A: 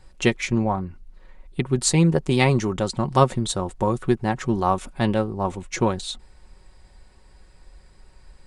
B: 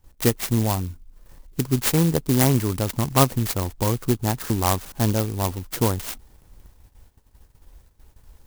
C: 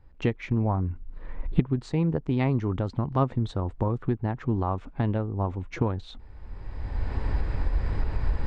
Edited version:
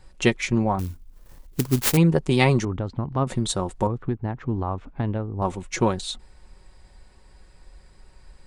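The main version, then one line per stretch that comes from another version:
A
0.79–1.97 from B
2.65–3.27 from C
3.87–5.42 from C

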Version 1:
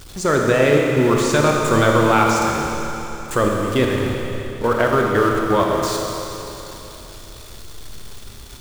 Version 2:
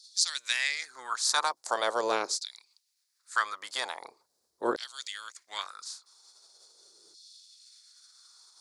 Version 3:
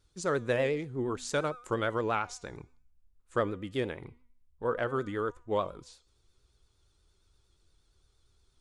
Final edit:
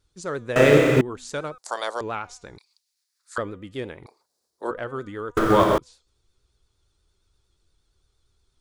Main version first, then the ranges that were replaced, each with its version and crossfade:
3
0.56–1.01 from 1
1.58–2.01 from 2
2.58–3.38 from 2
4.06–4.71 from 2
5.37–5.78 from 1

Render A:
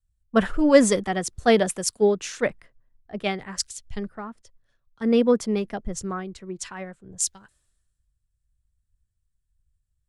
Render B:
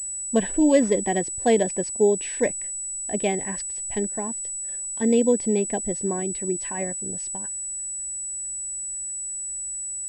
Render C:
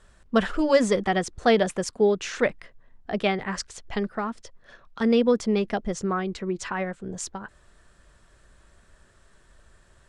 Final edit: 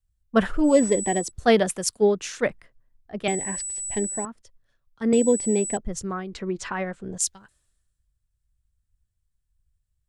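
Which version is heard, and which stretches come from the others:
A
0.71–1.24 from B, crossfade 0.16 s
3.28–4.25 from B
5.13–5.77 from B
6.33–7.18 from C

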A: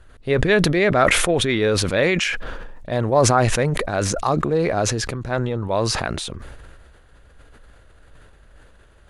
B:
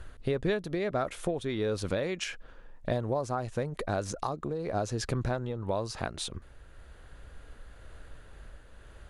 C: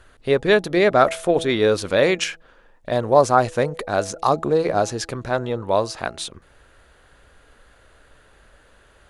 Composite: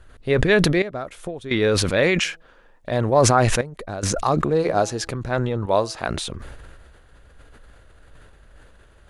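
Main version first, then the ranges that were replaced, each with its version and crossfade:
A
0.82–1.51 from B
2.25–2.91 from C
3.61–4.03 from B
4.6–5.1 from C, crossfade 0.10 s
5.66–6.08 from C

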